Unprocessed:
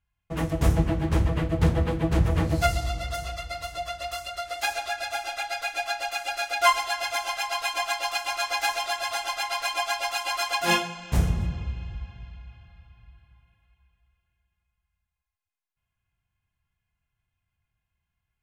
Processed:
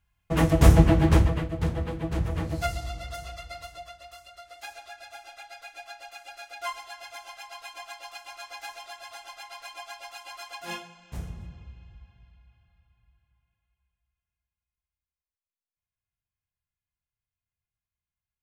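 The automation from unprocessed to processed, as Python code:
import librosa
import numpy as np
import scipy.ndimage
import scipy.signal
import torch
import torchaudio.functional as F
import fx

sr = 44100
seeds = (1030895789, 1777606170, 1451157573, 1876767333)

y = fx.gain(x, sr, db=fx.line((1.1, 6.0), (1.51, -6.0), (3.58, -6.0), (4.05, -14.0)))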